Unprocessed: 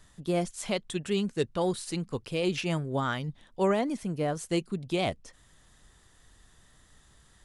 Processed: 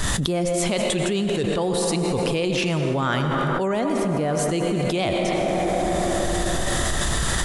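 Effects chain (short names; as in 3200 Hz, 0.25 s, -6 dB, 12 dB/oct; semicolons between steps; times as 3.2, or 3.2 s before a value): on a send at -6 dB: bell 98 Hz -12 dB 1.1 oct + reverb RT60 3.2 s, pre-delay 78 ms; on the sum: fast leveller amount 100%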